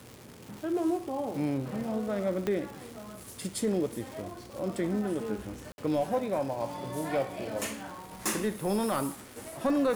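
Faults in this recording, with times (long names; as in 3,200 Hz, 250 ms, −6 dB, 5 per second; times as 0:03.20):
surface crackle 370 per second −39 dBFS
0:02.47: click −17 dBFS
0:05.72–0:05.78: drop-out 61 ms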